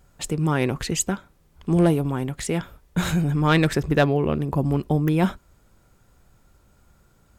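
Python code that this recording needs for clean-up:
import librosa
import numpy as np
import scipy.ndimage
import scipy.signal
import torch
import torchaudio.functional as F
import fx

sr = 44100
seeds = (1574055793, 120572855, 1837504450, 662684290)

y = fx.fix_declip(x, sr, threshold_db=-9.0)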